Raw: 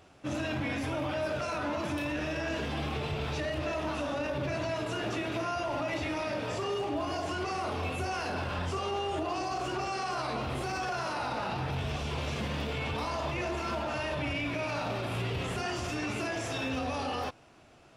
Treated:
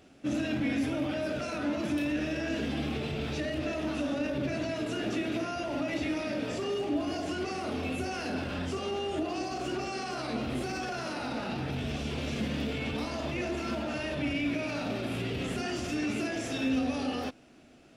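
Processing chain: fifteen-band graphic EQ 100 Hz -6 dB, 250 Hz +9 dB, 1 kHz -9 dB

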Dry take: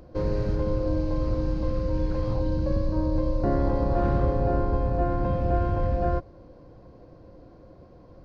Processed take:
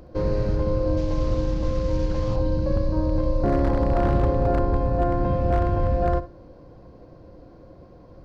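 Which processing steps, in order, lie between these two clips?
0.97–2.36 s: CVSD coder 32 kbps; flutter echo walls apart 11.8 m, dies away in 0.29 s; wavefolder -15 dBFS; trim +2.5 dB

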